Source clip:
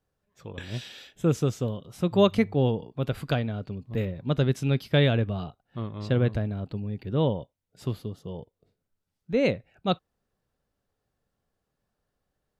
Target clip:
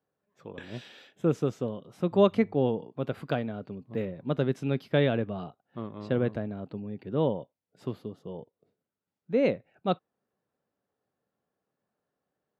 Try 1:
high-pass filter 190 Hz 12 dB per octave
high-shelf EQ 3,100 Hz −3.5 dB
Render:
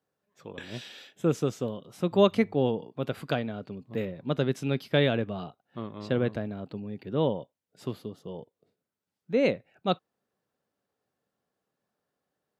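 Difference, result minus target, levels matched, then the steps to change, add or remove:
8,000 Hz band +8.0 dB
change: high-shelf EQ 3,100 Hz −14 dB

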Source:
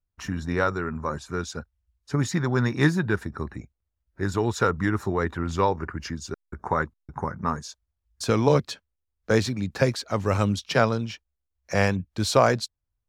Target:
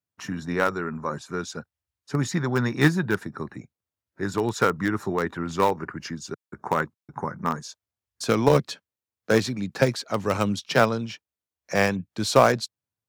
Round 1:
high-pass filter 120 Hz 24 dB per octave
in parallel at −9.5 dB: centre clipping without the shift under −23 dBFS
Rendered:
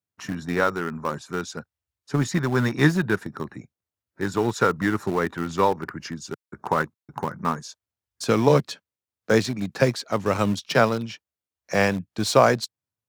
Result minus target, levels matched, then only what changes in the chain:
centre clipping without the shift: distortion −10 dB
change: centre clipping without the shift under −14 dBFS

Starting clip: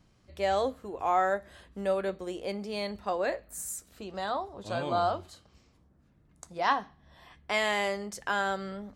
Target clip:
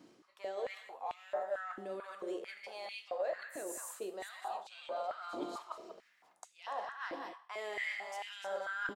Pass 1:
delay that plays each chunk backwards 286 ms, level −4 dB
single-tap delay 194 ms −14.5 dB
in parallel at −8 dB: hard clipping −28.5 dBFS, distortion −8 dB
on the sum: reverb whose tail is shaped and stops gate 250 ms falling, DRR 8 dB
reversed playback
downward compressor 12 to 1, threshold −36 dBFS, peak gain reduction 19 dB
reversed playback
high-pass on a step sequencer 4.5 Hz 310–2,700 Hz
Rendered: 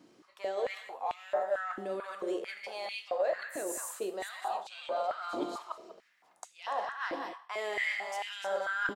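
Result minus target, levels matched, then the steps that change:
downward compressor: peak gain reduction −6 dB
change: downward compressor 12 to 1, threshold −42.5 dBFS, peak gain reduction 25 dB

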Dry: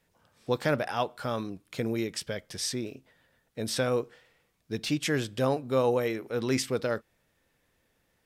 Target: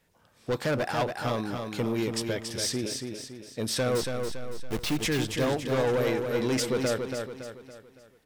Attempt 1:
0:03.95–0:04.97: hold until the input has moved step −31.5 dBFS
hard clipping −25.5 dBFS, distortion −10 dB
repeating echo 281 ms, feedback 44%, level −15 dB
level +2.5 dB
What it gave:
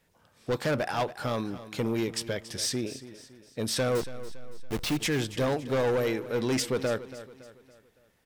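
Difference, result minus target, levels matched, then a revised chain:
echo-to-direct −9.5 dB
0:03.95–0:04.97: hold until the input has moved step −31.5 dBFS
hard clipping −25.5 dBFS, distortion −10 dB
repeating echo 281 ms, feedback 44%, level −5.5 dB
level +2.5 dB

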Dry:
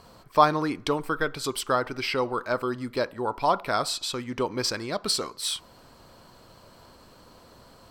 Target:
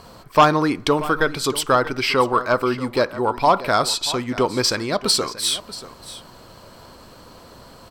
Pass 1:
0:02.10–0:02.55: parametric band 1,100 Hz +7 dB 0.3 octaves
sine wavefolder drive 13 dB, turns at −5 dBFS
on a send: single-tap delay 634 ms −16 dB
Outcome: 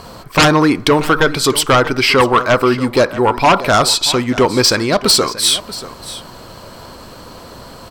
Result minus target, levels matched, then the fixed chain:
sine wavefolder: distortion +12 dB
0:02.10–0:02.55: parametric band 1,100 Hz +7 dB 0.3 octaves
sine wavefolder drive 4 dB, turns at −5 dBFS
on a send: single-tap delay 634 ms −16 dB

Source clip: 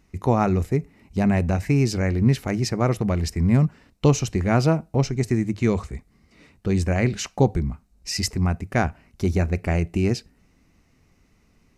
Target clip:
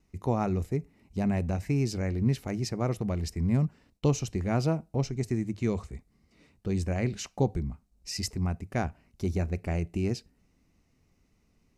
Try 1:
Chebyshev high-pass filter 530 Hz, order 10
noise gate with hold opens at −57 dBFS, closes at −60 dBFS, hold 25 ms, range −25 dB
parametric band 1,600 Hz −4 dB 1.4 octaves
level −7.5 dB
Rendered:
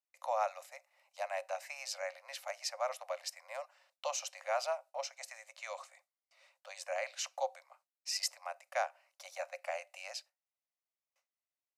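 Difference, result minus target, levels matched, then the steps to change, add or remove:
500 Hz band +3.0 dB
remove: Chebyshev high-pass filter 530 Hz, order 10

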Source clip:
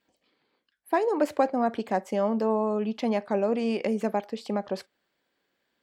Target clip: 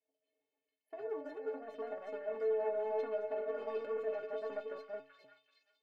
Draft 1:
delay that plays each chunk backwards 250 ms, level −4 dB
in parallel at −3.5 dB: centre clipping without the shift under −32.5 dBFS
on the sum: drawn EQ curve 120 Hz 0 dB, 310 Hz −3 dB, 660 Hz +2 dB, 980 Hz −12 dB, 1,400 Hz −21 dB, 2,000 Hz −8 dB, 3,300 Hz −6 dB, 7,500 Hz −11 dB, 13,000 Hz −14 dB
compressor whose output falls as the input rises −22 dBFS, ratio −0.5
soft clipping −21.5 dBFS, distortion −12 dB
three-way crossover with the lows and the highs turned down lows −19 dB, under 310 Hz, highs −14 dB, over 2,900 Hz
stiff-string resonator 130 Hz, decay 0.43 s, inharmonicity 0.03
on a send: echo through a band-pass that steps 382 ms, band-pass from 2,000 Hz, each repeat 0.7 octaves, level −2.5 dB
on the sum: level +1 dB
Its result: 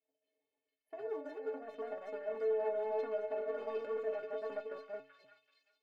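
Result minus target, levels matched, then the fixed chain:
centre clipping without the shift: distortion +8 dB
delay that plays each chunk backwards 250 ms, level −4 dB
in parallel at −3.5 dB: centre clipping without the shift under −38.5 dBFS
on the sum: drawn EQ curve 120 Hz 0 dB, 310 Hz −3 dB, 660 Hz +2 dB, 980 Hz −12 dB, 1,400 Hz −21 dB, 2,000 Hz −8 dB, 3,300 Hz −6 dB, 7,500 Hz −11 dB, 13,000 Hz −14 dB
compressor whose output falls as the input rises −22 dBFS, ratio −0.5
soft clipping −21.5 dBFS, distortion −12 dB
three-way crossover with the lows and the highs turned down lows −19 dB, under 310 Hz, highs −14 dB, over 2,900 Hz
stiff-string resonator 130 Hz, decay 0.43 s, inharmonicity 0.03
on a send: echo through a band-pass that steps 382 ms, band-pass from 2,000 Hz, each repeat 0.7 octaves, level −2.5 dB
on the sum: level +1 dB

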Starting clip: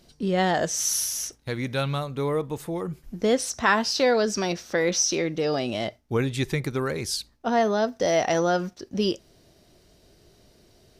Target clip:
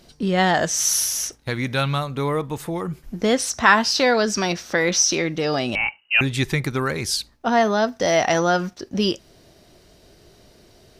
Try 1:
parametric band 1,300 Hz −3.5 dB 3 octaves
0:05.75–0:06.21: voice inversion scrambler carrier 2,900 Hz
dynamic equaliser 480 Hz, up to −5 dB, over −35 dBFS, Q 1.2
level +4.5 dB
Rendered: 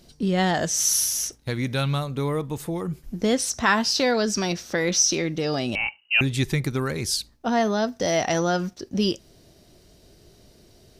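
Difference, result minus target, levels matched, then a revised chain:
1,000 Hz band −3.0 dB
parametric band 1,300 Hz +3 dB 3 octaves
0:05.75–0:06.21: voice inversion scrambler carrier 2,900 Hz
dynamic equaliser 480 Hz, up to −5 dB, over −35 dBFS, Q 1.2
level +4.5 dB

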